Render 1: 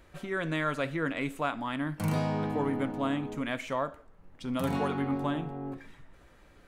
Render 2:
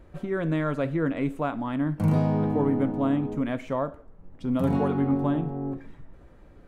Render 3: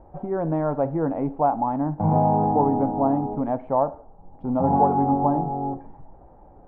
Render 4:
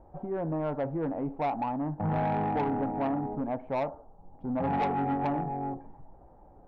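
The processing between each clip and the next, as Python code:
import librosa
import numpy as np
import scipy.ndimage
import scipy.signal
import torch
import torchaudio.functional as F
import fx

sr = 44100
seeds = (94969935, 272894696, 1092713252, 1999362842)

y1 = fx.tilt_shelf(x, sr, db=8.0, hz=1100.0)
y2 = fx.lowpass_res(y1, sr, hz=820.0, q=8.0)
y3 = 10.0 ** (-18.0 / 20.0) * np.tanh(y2 / 10.0 ** (-18.0 / 20.0))
y3 = y3 * 10.0 ** (-5.5 / 20.0)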